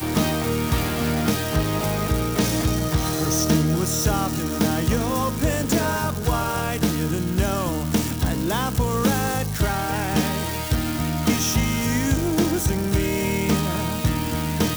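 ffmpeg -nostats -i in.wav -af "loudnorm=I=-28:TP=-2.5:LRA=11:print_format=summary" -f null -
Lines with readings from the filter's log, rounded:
Input Integrated:    -22.5 LUFS
Input True Peak:      -7.7 dBTP
Input LRA:             1.5 LU
Input Threshold:     -32.5 LUFS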